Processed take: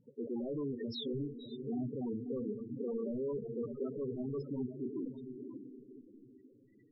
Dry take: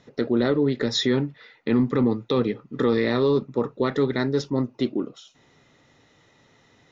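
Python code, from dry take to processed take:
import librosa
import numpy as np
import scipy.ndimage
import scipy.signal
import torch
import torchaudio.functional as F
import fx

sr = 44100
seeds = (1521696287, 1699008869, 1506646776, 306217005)

y = np.clip(x, -10.0 ** (-27.5 / 20.0), 10.0 ** (-27.5 / 20.0))
y = fx.echo_diffused(y, sr, ms=550, feedback_pct=40, wet_db=-6)
y = fx.spec_topn(y, sr, count=8)
y = F.gain(torch.from_numpy(y), -7.0).numpy()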